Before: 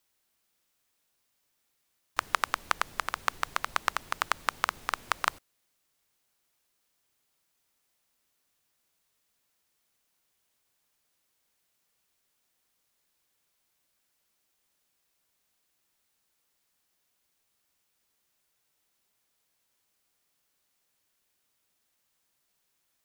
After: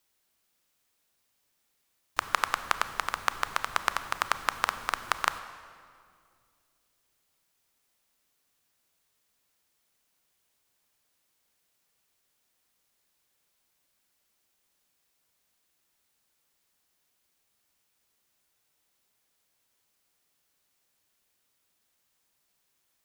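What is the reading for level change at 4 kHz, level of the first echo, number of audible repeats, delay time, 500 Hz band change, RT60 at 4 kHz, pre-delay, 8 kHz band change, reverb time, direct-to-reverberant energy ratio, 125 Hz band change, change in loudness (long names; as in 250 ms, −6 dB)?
+1.5 dB, no echo audible, no echo audible, no echo audible, +1.5 dB, 1.6 s, 28 ms, +1.5 dB, 2.2 s, 11.0 dB, +1.5 dB, +1.5 dB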